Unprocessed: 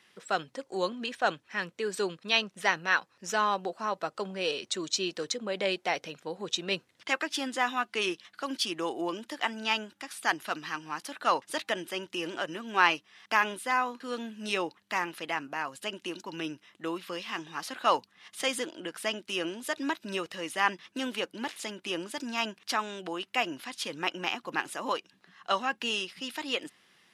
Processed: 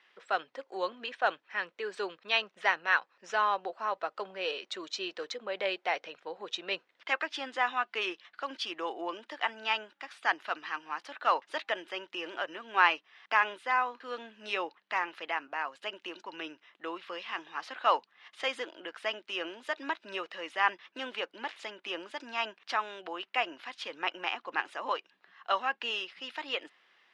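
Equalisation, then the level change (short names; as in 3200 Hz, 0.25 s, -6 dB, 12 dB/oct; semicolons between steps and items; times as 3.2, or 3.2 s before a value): BPF 510–3100 Hz; 0.0 dB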